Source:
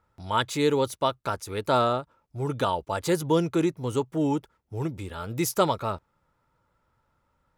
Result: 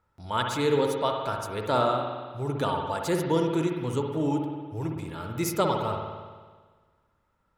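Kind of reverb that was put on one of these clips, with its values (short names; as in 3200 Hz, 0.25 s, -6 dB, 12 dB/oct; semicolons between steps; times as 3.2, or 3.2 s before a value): spring tank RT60 1.5 s, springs 56 ms, chirp 40 ms, DRR 2 dB; gain -3 dB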